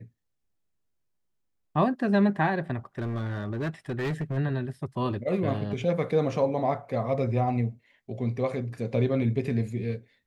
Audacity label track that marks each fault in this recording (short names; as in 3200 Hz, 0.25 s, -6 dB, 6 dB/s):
2.980000	4.380000	clipped -26 dBFS